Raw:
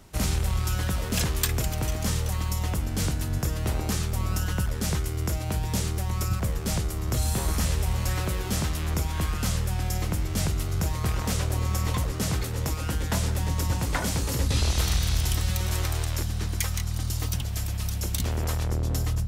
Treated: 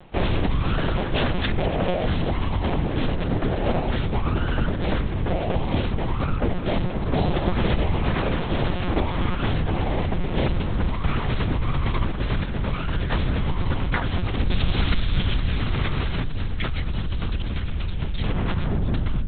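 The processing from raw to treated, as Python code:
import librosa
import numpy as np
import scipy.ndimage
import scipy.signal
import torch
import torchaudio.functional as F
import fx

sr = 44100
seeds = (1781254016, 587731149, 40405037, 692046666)

y = fx.peak_eq(x, sr, hz=640.0, db=fx.steps((0.0, 9.0), (10.83, -6.0)), octaves=0.36)
y = fx.lpc_monotone(y, sr, seeds[0], pitch_hz=180.0, order=8)
y = y * librosa.db_to_amplitude(4.0)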